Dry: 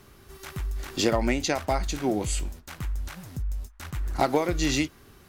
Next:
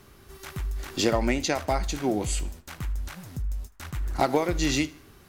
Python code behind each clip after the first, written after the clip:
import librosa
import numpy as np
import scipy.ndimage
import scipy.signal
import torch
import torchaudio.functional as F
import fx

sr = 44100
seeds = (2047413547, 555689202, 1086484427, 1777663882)

y = fx.echo_feedback(x, sr, ms=77, feedback_pct=42, wet_db=-21)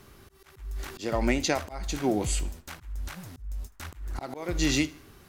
y = fx.auto_swell(x, sr, attack_ms=264.0)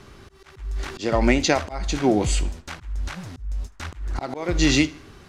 y = scipy.signal.sosfilt(scipy.signal.butter(2, 6700.0, 'lowpass', fs=sr, output='sos'), x)
y = y * librosa.db_to_amplitude(7.0)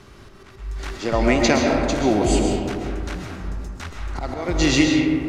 y = fx.rev_freeverb(x, sr, rt60_s=2.5, hf_ratio=0.3, predelay_ms=90, drr_db=0.5)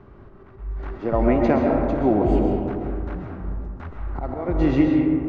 y = scipy.signal.sosfilt(scipy.signal.butter(2, 1100.0, 'lowpass', fs=sr, output='sos'), x)